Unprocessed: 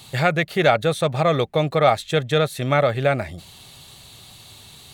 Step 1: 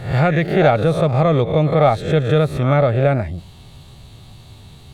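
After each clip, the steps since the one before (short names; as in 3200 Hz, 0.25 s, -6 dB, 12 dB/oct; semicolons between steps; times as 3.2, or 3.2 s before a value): spectral swells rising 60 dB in 0.50 s; tilt -3 dB/oct; gain -1 dB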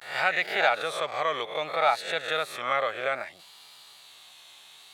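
vibrato 0.61 Hz 95 cents; HPF 1200 Hz 12 dB/oct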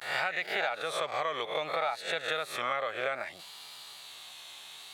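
compressor 6:1, threshold -32 dBFS, peak gain reduction 14 dB; gain +3.5 dB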